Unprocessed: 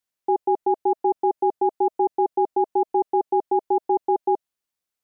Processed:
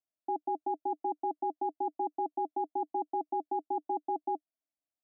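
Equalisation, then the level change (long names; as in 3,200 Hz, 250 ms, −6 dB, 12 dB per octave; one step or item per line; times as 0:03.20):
pair of resonant band-passes 440 Hz, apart 1.1 octaves
0.0 dB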